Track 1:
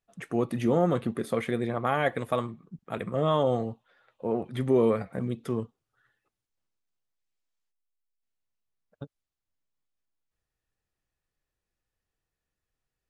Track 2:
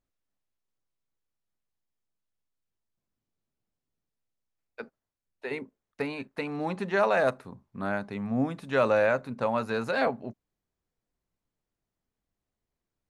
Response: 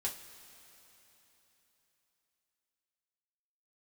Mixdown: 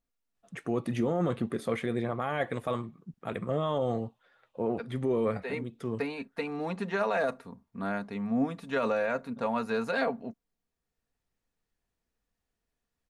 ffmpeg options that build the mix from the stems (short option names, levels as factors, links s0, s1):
-filter_complex "[0:a]lowpass=10000,adelay=350,volume=0.891[s0];[1:a]aecho=1:1:4.3:0.49,volume=0.75,asplit=2[s1][s2];[s2]apad=whole_len=592999[s3];[s0][s3]sidechaincompress=threshold=0.0141:ratio=8:attack=9.9:release=900[s4];[s4][s1]amix=inputs=2:normalize=0,alimiter=limit=0.106:level=0:latency=1:release=11"